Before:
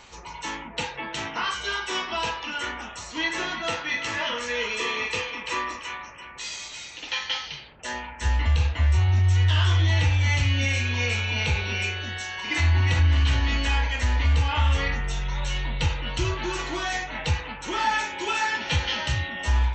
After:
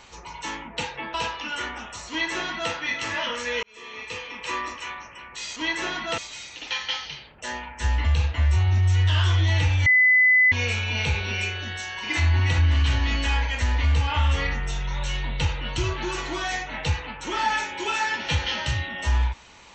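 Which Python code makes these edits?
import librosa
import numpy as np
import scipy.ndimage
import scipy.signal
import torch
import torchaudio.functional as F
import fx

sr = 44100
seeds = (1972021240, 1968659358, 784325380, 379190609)

y = fx.edit(x, sr, fx.cut(start_s=1.14, length_s=1.03),
    fx.duplicate(start_s=3.12, length_s=0.62, to_s=6.59),
    fx.fade_in_span(start_s=4.66, length_s=1.02),
    fx.bleep(start_s=10.27, length_s=0.66, hz=2010.0, db=-13.5), tone=tone)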